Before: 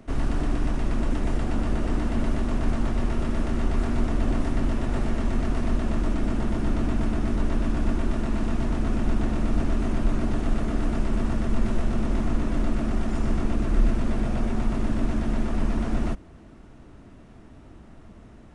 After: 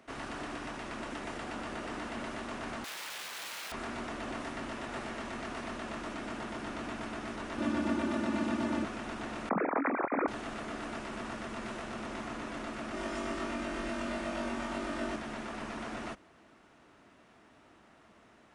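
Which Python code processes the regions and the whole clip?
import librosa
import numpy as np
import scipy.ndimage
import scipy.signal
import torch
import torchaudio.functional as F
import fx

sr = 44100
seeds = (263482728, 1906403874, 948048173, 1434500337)

y = fx.chain(x, sr, fx.low_shelf(hz=74.0, db=-12.0),
    fx.overflow_wrap(gain_db=34.0), at=(2.84, 3.72))
y = fx.chain(y, sr, fx.highpass(hz=87.0, slope=24),
    fx.low_shelf(hz=400.0, db=12.0),
    fx.comb(ms=3.4, depth=0.7), at=(7.58, 8.85))
y = fx.chain(y, sr, fx.sine_speech(),
    fx.cheby1_lowpass(hz=2400.0, order=8),
    fx.doubler(ms=25.0, db=-13.0), at=(9.49, 10.28))
y = fx.chain(y, sr, fx.comb(ms=3.3, depth=0.44),
    fx.room_flutter(wall_m=3.6, rt60_s=0.33), at=(12.92, 15.16))
y = fx.highpass(y, sr, hz=1400.0, slope=6)
y = fx.high_shelf(y, sr, hz=4400.0, db=-7.5)
y = F.gain(torch.from_numpy(y), 1.5).numpy()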